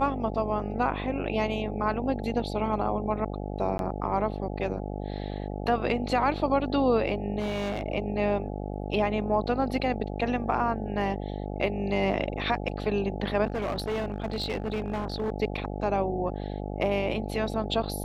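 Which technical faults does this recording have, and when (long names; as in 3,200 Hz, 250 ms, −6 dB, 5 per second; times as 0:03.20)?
mains buzz 50 Hz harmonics 17 −34 dBFS
0:03.78–0:03.79: drop-out 12 ms
0:07.39–0:07.83: clipping −26 dBFS
0:13.46–0:15.30: clipping −25.5 dBFS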